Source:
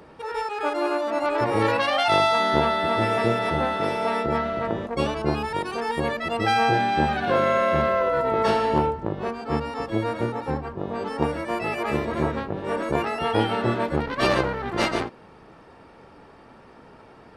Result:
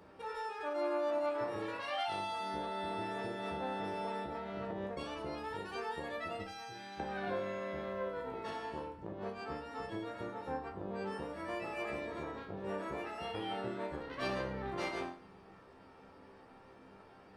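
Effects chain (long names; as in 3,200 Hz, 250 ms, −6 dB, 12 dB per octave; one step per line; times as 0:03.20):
0:06.42–0:07.00: guitar amp tone stack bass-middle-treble 5-5-5
downward compressor 3 to 1, threshold −30 dBFS, peak gain reduction 11.5 dB
resonators tuned to a chord C2 sus4, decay 0.47 s
level +4 dB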